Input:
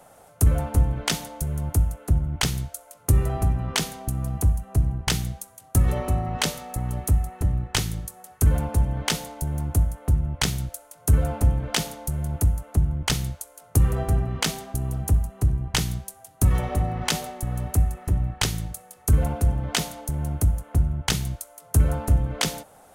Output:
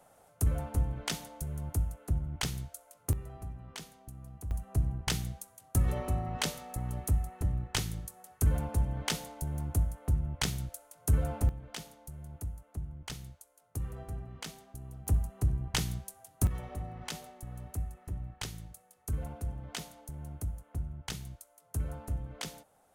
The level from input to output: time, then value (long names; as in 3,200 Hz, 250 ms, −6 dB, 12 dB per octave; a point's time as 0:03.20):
−10 dB
from 0:03.13 −20 dB
from 0:04.51 −8 dB
from 0:11.49 −18 dB
from 0:15.07 −7.5 dB
from 0:16.47 −15.5 dB